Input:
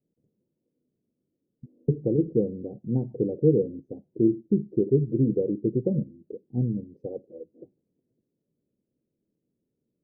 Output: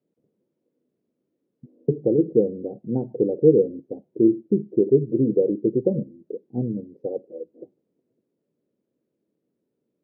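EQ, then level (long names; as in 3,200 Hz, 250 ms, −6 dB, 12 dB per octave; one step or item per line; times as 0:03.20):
resonant band-pass 800 Hz, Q 0.56
+8.0 dB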